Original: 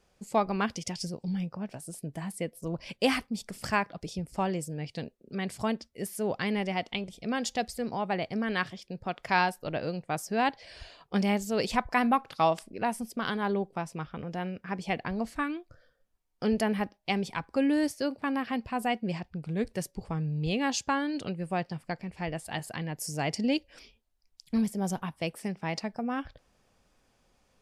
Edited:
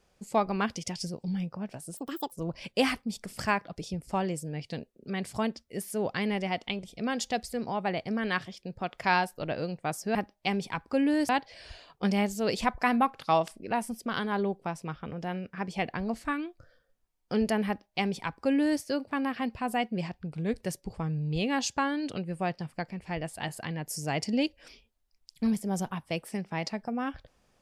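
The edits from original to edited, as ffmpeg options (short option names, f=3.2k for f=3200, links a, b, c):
-filter_complex "[0:a]asplit=5[a][b][c][d][e];[a]atrim=end=1.974[f];[b]atrim=start=1.97:end=2.57,asetpts=PTS-STARTPTS,asetrate=75411,aresample=44100[g];[c]atrim=start=2.566:end=10.402[h];[d]atrim=start=16.778:end=17.922[i];[e]atrim=start=10.398[j];[f][g]acrossfade=d=0.004:c1=hsin:c2=hsin[k];[k][h]acrossfade=d=0.004:c1=hsin:c2=hsin[l];[l][i]acrossfade=d=0.004:c1=hsin:c2=hsin[m];[m][j]acrossfade=d=0.004:c1=hsin:c2=hsin"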